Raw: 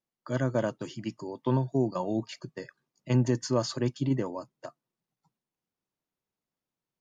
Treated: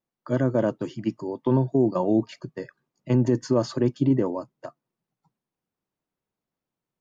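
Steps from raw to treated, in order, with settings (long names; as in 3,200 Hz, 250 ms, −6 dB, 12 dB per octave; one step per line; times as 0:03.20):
dynamic equaliser 340 Hz, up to +6 dB, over −38 dBFS, Q 0.82
brickwall limiter −16 dBFS, peak gain reduction 6 dB
high-shelf EQ 2,700 Hz −9.5 dB
level +4.5 dB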